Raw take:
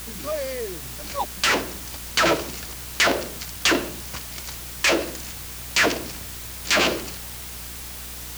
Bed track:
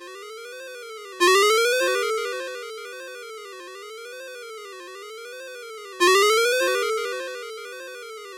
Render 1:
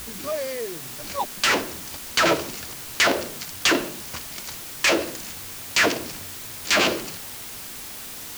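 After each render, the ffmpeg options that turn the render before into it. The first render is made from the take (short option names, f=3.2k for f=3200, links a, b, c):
-af "bandreject=f=60:t=h:w=4,bandreject=f=120:t=h:w=4,bandreject=f=180:t=h:w=4"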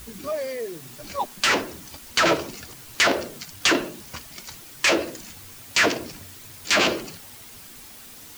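-af "afftdn=nr=8:nf=-37"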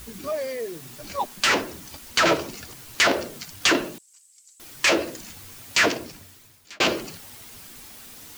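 -filter_complex "[0:a]asettb=1/sr,asplit=3[a][b][c];[a]atrim=end=3.984[d];[b]atrim=start=3.98:end=4.6,asetpts=PTS-STARTPTS,afade=t=in:d=0.004:c=qsin,afade=t=out:st=0.616:d=0.004:c=qsin,bandpass=f=7.9k:t=q:w=8.1[e];[c]atrim=start=4.596[f];[d][e]acrossfade=d=0.004:c1=hsin:c2=qsin[g];[g][f]acrossfade=d=0.004:c1=qsin:c2=hsin,asplit=2[h][i];[h]atrim=end=6.8,asetpts=PTS-STARTPTS,afade=t=out:st=5.81:d=0.99[j];[i]atrim=start=6.8,asetpts=PTS-STARTPTS,afade=t=in:d=0.004:c=hsin[k];[j][k]concat=n=2:v=0:a=1"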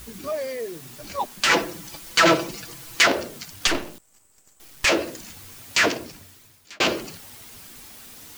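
-filter_complex "[0:a]asettb=1/sr,asplit=3[a][b][c];[a]atrim=end=1.494[d];[b]atrim=start=1.49:end=3.06,asetpts=PTS-STARTPTS,afade=t=in:d=0.004:c=qsin,afade=t=out:st=1.566:d=0.004:c=qsin,aecho=1:1:6:0.85,atrim=end_sample=69237[e];[c]atrim=start=3.056[f];[d][e]acrossfade=d=0.004:c1=hsin:c2=qsin[g];[g][f]acrossfade=d=0.004:c1=qsin:c2=hsin,asettb=1/sr,asplit=3[h][i][j];[h]atrim=end=3.674[k];[i]atrim=start=3.67:end=4.85,asetpts=PTS-STARTPTS,afade=t=in:d=0.004:c=qsin,afade=t=out:st=1.176:d=0.004:c=qsin,aeval=exprs='max(val(0),0)':c=same[l];[j]atrim=start=4.846[m];[k][l]acrossfade=d=0.004:c1=hsin:c2=qsin[n];[n][m]acrossfade=d=0.004:c1=qsin:c2=hsin"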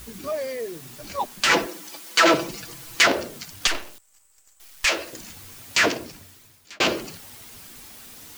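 -filter_complex "[0:a]asettb=1/sr,asplit=3[a][b][c];[a]atrim=end=1.664[d];[b]atrim=start=1.66:end=2.34,asetpts=PTS-STARTPTS,afade=t=in:d=0.004:c=qsin,afade=t=out:st=0.676:d=0.004:c=qsin,highpass=f=240:w=0.5412,highpass=f=240:w=1.3066[e];[c]atrim=start=2.336[f];[d][e]acrossfade=d=0.004:c1=hsin:c2=qsin[g];[g][f]acrossfade=d=0.004:c1=qsin:c2=hsin,asettb=1/sr,asplit=3[h][i][j];[h]atrim=end=3.674[k];[i]atrim=start=3.67:end=5.13,asetpts=PTS-STARTPTS,afade=t=in:d=0.004:c=qsin,afade=t=out:st=1.456:d=0.004:c=qsin,equalizer=f=190:w=0.39:g=-14[l];[j]atrim=start=5.126[m];[k][l]acrossfade=d=0.004:c1=hsin:c2=qsin[n];[n][m]acrossfade=d=0.004:c1=qsin:c2=hsin"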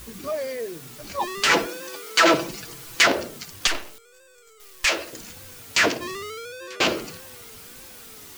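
-filter_complex "[1:a]volume=-17dB[a];[0:a][a]amix=inputs=2:normalize=0"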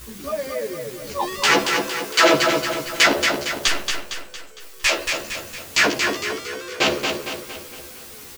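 -filter_complex "[0:a]asplit=2[a][b];[b]adelay=14,volume=-2dB[c];[a][c]amix=inputs=2:normalize=0,asplit=2[d][e];[e]aecho=0:1:229|458|687|916|1145|1374:0.562|0.27|0.13|0.0622|0.0299|0.0143[f];[d][f]amix=inputs=2:normalize=0"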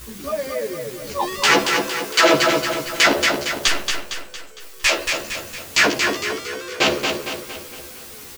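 -af "volume=1.5dB,alimiter=limit=-3dB:level=0:latency=1"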